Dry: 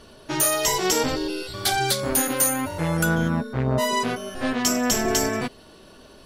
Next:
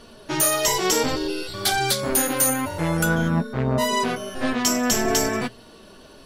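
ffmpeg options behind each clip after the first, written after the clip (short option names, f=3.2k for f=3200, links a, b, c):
-af "bandreject=f=60:t=h:w=6,bandreject=f=120:t=h:w=6,acontrast=48,flanger=delay=4.2:depth=4.9:regen=73:speed=0.53:shape=sinusoidal"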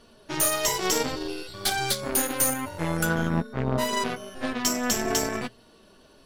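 -af "aeval=exprs='0.398*(cos(1*acos(clip(val(0)/0.398,-1,1)))-cos(1*PI/2))+0.0316*(cos(4*acos(clip(val(0)/0.398,-1,1)))-cos(4*PI/2))+0.0251*(cos(7*acos(clip(val(0)/0.398,-1,1)))-cos(7*PI/2))':c=same,volume=-3.5dB"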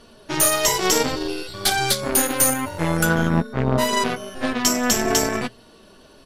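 -af "aresample=32000,aresample=44100,volume=6dB"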